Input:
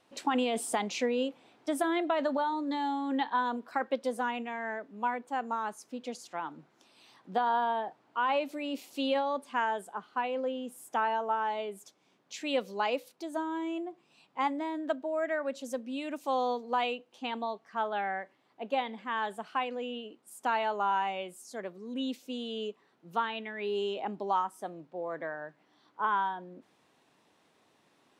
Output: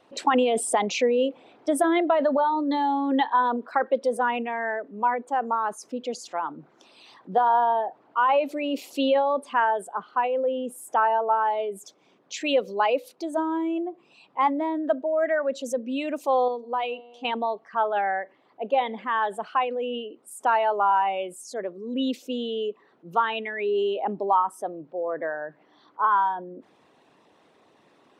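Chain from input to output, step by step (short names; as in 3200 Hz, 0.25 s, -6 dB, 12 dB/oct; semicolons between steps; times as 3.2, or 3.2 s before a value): formant sharpening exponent 1.5; 16.48–17.25 resonator 120 Hz, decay 1.9 s, mix 50%; gain +8 dB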